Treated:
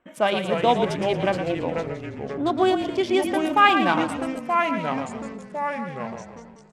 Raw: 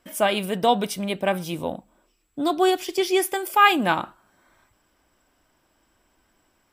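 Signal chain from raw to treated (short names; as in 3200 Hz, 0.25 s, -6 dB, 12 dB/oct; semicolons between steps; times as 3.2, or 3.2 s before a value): Wiener smoothing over 9 samples; low shelf 80 Hz -10.5 dB; on a send: frequency-shifting echo 0.114 s, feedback 45%, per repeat -40 Hz, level -8 dB; on the sum: echoes that change speed 0.252 s, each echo -3 st, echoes 3, each echo -6 dB; air absorption 69 m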